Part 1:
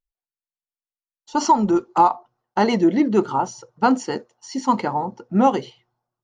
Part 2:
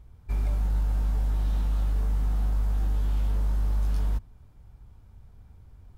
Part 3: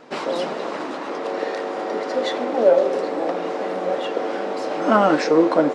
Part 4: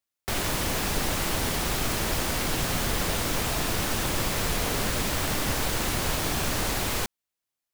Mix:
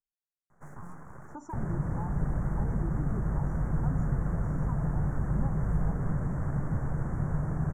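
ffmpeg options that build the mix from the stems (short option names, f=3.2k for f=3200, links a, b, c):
-filter_complex "[0:a]aeval=exprs='0.355*(abs(mod(val(0)/0.355+3,4)-2)-1)':c=same,volume=-17dB,asplit=2[a][b];[1:a]adelay=1800,volume=-10dB[c];[2:a]aeval=exprs='abs(val(0))':c=same,adelay=500,volume=-18dB[d];[3:a]adynamicsmooth=sensitivity=0.5:basefreq=2.5k,adelay=1250,volume=-1.5dB[e];[b]apad=whole_len=275434[f];[d][f]sidechaincompress=threshold=-46dB:ratio=8:attack=16:release=296[g];[a][c][g][e]amix=inputs=4:normalize=0,acrossover=split=170[h][i];[i]acompressor=threshold=-47dB:ratio=2[j];[h][j]amix=inputs=2:normalize=0,asuperstop=centerf=3500:order=8:qfactor=0.68,equalizer=f=150:w=2.6:g=13"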